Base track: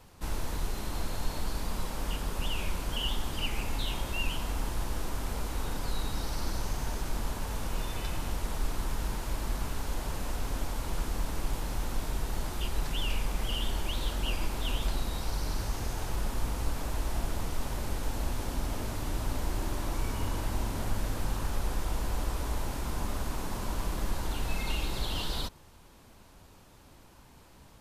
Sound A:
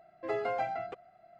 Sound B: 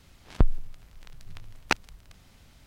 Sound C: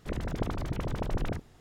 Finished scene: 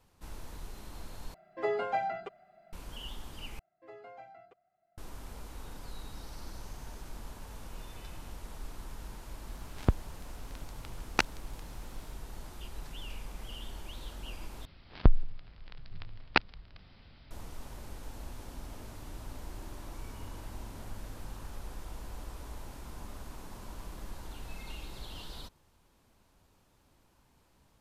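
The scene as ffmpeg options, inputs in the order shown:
ffmpeg -i bed.wav -i cue0.wav -i cue1.wav -filter_complex "[1:a]asplit=2[link_01][link_02];[2:a]asplit=2[link_03][link_04];[0:a]volume=-11.5dB[link_05];[link_01]aecho=1:1:5:0.6[link_06];[link_03]highpass=46[link_07];[link_04]aresample=11025,aresample=44100[link_08];[link_05]asplit=4[link_09][link_10][link_11][link_12];[link_09]atrim=end=1.344[link_13];[link_06]atrim=end=1.39,asetpts=PTS-STARTPTS,volume=-0.5dB[link_14];[link_10]atrim=start=2.726:end=3.594[link_15];[link_02]atrim=end=1.39,asetpts=PTS-STARTPTS,volume=-17.5dB[link_16];[link_11]atrim=start=4.976:end=14.654[link_17];[link_08]atrim=end=2.66,asetpts=PTS-STARTPTS,volume=-0.5dB[link_18];[link_12]atrim=start=17.306[link_19];[link_07]atrim=end=2.66,asetpts=PTS-STARTPTS,volume=-2.5dB,afade=type=in:duration=0.004:curve=hsin,afade=type=out:start_time=2.656:duration=0.004:curve=hsin,adelay=9480[link_20];[link_13][link_14]acrossfade=duration=0.004:curve1=hsin:curve2=hsin[link_21];[link_21][link_15]acrossfade=duration=0.004:curve1=hsin:curve2=hsin[link_22];[link_22][link_16]acrossfade=duration=0.004:curve1=hsin:curve2=hsin[link_23];[link_23][link_17]acrossfade=duration=0.004:curve1=hsin:curve2=hsin[link_24];[link_24][link_18]acrossfade=duration=0.004:curve1=hsin:curve2=hsin[link_25];[link_25][link_19]acrossfade=duration=0.004:curve1=hsin:curve2=hsin[link_26];[link_26][link_20]amix=inputs=2:normalize=0" out.wav

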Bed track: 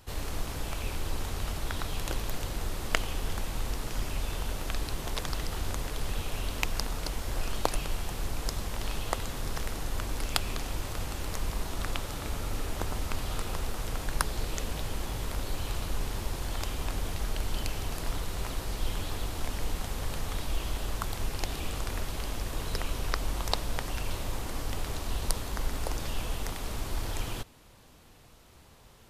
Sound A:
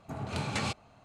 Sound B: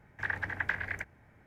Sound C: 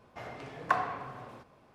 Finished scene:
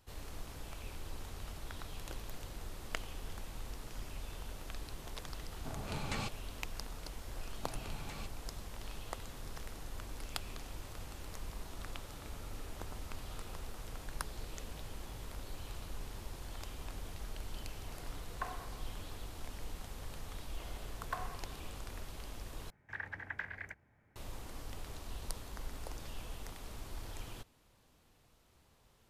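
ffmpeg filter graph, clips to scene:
ffmpeg -i bed.wav -i cue0.wav -i cue1.wav -i cue2.wav -filter_complex "[1:a]asplit=2[link_01][link_02];[3:a]asplit=2[link_03][link_04];[0:a]volume=-12dB[link_05];[link_02]acompressor=threshold=-39dB:ratio=6:attack=3.2:release=140:knee=1:detection=peak[link_06];[link_05]asplit=2[link_07][link_08];[link_07]atrim=end=22.704[link_09];[2:a]atrim=end=1.46,asetpts=PTS-STARTPTS,volume=-9.5dB[link_10];[link_08]atrim=start=24.156[link_11];[link_01]atrim=end=1.04,asetpts=PTS-STARTPTS,volume=-7dB,afade=type=in:duration=0.004:curve=hsin,afade=type=out:start_time=1.036:duration=0.004:curve=hsin,adelay=5560[link_12];[link_06]atrim=end=1.04,asetpts=PTS-STARTPTS,volume=-5.5dB,afade=type=in:duration=0.004:curve=hsin,afade=type=out:start_time=1.036:duration=0.004:curve=hsin,adelay=332514S[link_13];[link_03]atrim=end=1.74,asetpts=PTS-STARTPTS,volume=-14dB,afade=type=in:duration=0.004:curve=hsin,afade=type=out:start_time=1.736:duration=0.004:curve=hsin,adelay=17710[link_14];[link_04]atrim=end=1.74,asetpts=PTS-STARTPTS,volume=-13dB,afade=type=in:duration=0.004:curve=hsin,afade=type=out:start_time=1.736:duration=0.004:curve=hsin,adelay=20420[link_15];[link_09][link_10]acrossfade=duration=0.004:curve1=hsin:curve2=hsin[link_16];[link_16][link_11]acrossfade=duration=0.004:curve1=hsin:curve2=hsin[link_17];[link_17][link_12][link_13][link_14][link_15]amix=inputs=5:normalize=0" out.wav

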